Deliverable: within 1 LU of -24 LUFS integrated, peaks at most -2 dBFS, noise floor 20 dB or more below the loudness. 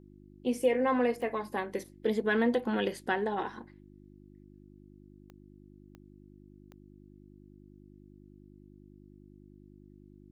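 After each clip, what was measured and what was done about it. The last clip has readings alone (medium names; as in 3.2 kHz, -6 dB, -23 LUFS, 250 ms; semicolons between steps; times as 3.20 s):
clicks found 4; hum 50 Hz; highest harmonic 350 Hz; hum level -54 dBFS; loudness -31.0 LUFS; peak level -15.5 dBFS; loudness target -24.0 LUFS
-> de-click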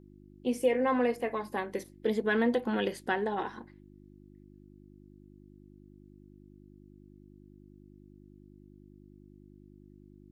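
clicks found 0; hum 50 Hz; highest harmonic 350 Hz; hum level -54 dBFS
-> de-hum 50 Hz, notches 7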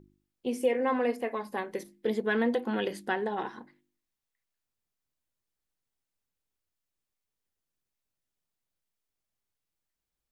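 hum not found; loudness -31.0 LUFS; peak level -15.5 dBFS; loudness target -24.0 LUFS
-> trim +7 dB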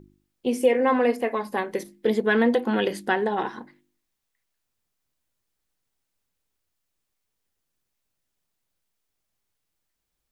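loudness -24.0 LUFS; peak level -8.5 dBFS; noise floor -80 dBFS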